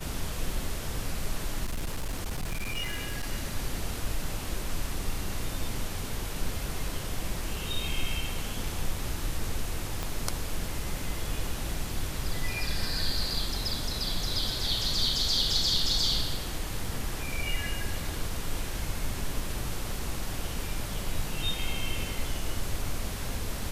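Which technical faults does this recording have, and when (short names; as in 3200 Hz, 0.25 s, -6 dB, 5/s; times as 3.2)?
1.64–3.24 clipped -27.5 dBFS
10.03 pop -16 dBFS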